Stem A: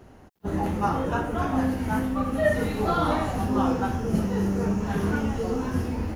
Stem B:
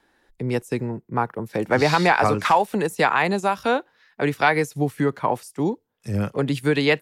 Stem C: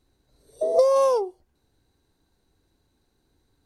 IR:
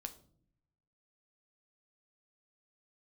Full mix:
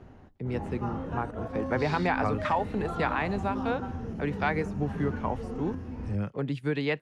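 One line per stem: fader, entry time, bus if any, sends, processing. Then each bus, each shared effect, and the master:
-3.5 dB, 0.00 s, bus A, send -10 dB, auto duck -12 dB, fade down 0.80 s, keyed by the second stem
-10.0 dB, 0.00 s, no bus, no send, none
-4.5 dB, 0.70 s, bus A, no send, none
bus A: 0.0 dB, slow attack 298 ms; compression, threshold -38 dBFS, peak gain reduction 15 dB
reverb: on, pre-delay 7 ms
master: low-pass 7.9 kHz 12 dB/octave; tone controls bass +4 dB, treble -8 dB

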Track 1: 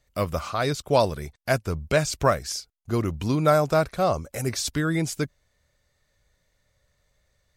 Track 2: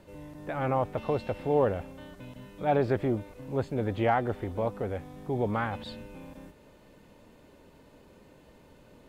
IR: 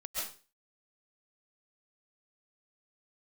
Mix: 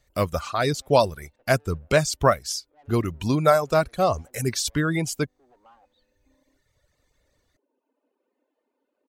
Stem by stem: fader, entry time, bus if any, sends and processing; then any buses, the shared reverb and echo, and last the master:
+2.5 dB, 0.00 s, no send, none
-13.5 dB, 0.10 s, no send, elliptic high-pass 250 Hz; treble shelf 3.1 kHz -12 dB; valve stage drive 32 dB, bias 0.4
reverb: none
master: reverb removal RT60 1.5 s

